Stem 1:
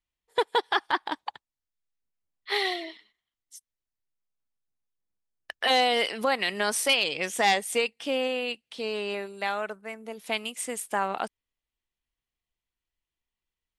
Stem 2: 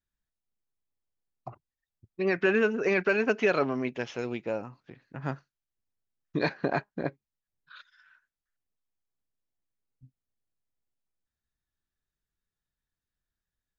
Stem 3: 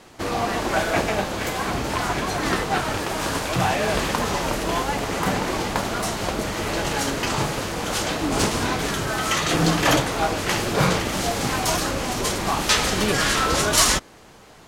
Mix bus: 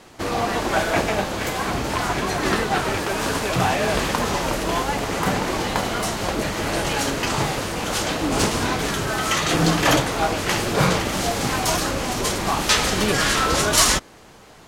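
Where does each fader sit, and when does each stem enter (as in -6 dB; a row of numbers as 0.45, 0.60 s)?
-10.5, -5.0, +1.0 dB; 0.00, 0.00, 0.00 s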